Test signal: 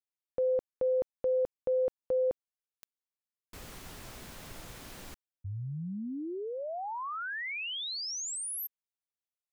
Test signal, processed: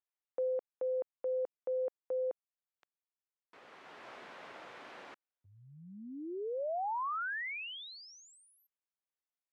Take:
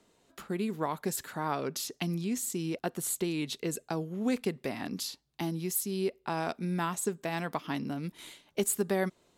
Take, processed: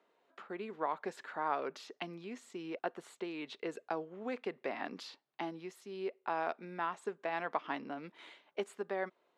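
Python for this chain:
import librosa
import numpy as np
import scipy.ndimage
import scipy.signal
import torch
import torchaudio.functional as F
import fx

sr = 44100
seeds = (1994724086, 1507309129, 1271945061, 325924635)

y = fx.rider(x, sr, range_db=4, speed_s=0.5)
y = fx.bandpass_edges(y, sr, low_hz=480.0, high_hz=2200.0)
y = F.gain(torch.from_numpy(y), -1.0).numpy()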